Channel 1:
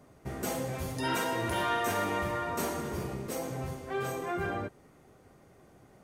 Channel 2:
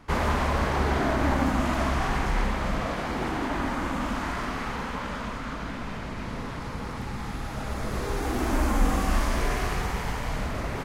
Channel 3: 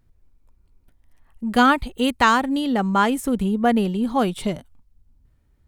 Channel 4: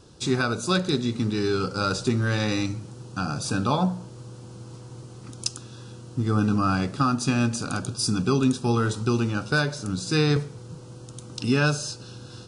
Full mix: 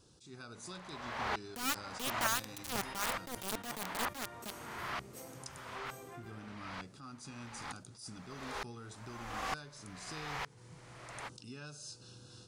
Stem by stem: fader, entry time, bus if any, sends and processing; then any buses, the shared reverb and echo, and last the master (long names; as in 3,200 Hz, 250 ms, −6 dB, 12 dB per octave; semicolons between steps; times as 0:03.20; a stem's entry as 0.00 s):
−9.5 dB, 1.85 s, bus A, no send, no processing
−3.0 dB, 0.45 s, no bus, no send, three-way crossover with the lows and the highs turned down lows −19 dB, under 550 Hz, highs −16 dB, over 5,100 Hz; tremolo with a ramp in dB swelling 1.1 Hz, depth 37 dB
−9.5 dB, 0.00 s, no bus, no send, downward compressor 2.5 to 1, threshold −29 dBFS, peak gain reduction 12 dB; bit reduction 4 bits
−14.0 dB, 0.00 s, bus A, no send, no processing
bus A: 0.0 dB, downward compressor 4 to 1, threshold −48 dBFS, peak gain reduction 15 dB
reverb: not used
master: high-shelf EQ 4,000 Hz +8 dB; level that may rise only so fast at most 110 dB per second